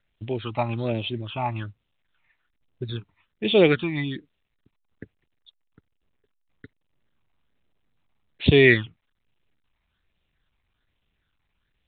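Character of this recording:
phaser sweep stages 8, 1.2 Hz, lowest notch 440–1,500 Hz
mu-law

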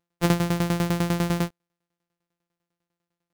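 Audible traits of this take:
a buzz of ramps at a fixed pitch in blocks of 256 samples
tremolo saw down 10 Hz, depth 85%

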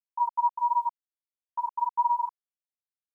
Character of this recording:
tremolo saw up 1.9 Hz, depth 30%
a quantiser's noise floor 12 bits, dither none
a shimmering, thickened sound

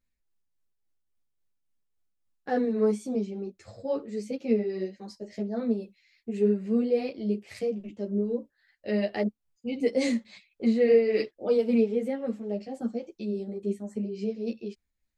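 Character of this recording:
tremolo triangle 3.6 Hz, depth 50%
a shimmering, thickened sound

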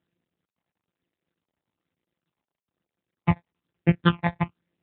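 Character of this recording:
a buzz of ramps at a fixed pitch in blocks of 256 samples
phaser sweep stages 8, 1.1 Hz, lowest notch 380–1,100 Hz
AMR narrowband

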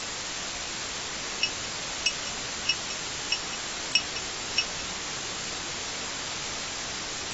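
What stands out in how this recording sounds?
a buzz of ramps at a fixed pitch in blocks of 8 samples
sample-and-hold tremolo
a quantiser's noise floor 6 bits, dither triangular
AAC

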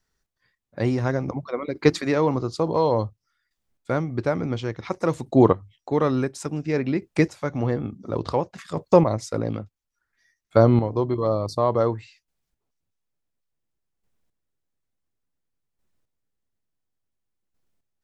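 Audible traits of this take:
chopped level 0.57 Hz, depth 60%, duty 15%

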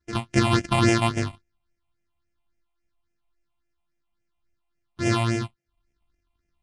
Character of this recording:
a buzz of ramps at a fixed pitch in blocks of 128 samples
phaser sweep stages 6, 3.6 Hz, lowest notch 410–1,100 Hz
Ogg Vorbis

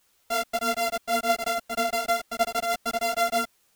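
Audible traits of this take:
a buzz of ramps at a fixed pitch in blocks of 64 samples
tremolo triangle 6.3 Hz, depth 60%
a quantiser's noise floor 12 bits, dither triangular
a shimmering, thickened sound

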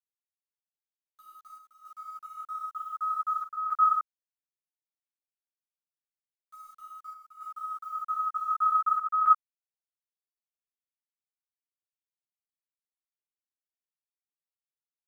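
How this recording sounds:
a quantiser's noise floor 10 bits, dither none
chopped level 0.54 Hz, depth 60%, duty 85%
a shimmering, thickened sound

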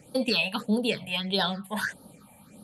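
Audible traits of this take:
phaser sweep stages 6, 1.6 Hz, lowest notch 350–2,300 Hz

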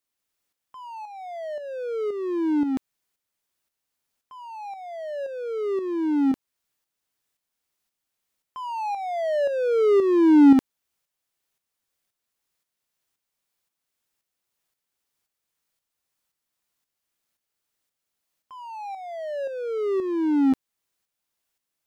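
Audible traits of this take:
tremolo saw up 1.9 Hz, depth 55%

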